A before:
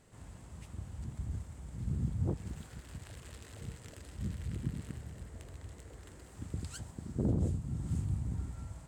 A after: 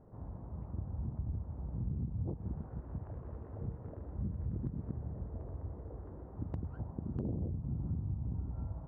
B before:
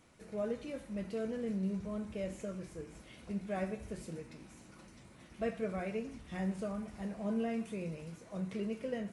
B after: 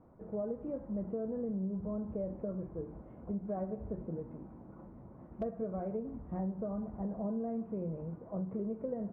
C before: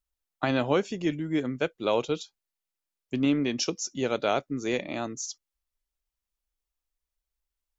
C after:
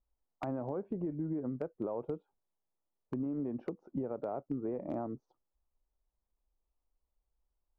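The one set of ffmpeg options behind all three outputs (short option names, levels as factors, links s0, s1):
-af "lowpass=f=1000:w=0.5412,lowpass=f=1000:w=1.3066,alimiter=level_in=1.06:limit=0.0631:level=0:latency=1:release=197,volume=0.944,acompressor=threshold=0.0112:ratio=6,aeval=exprs='0.0266*(abs(mod(val(0)/0.0266+3,4)-2)-1)':c=same,volume=1.88"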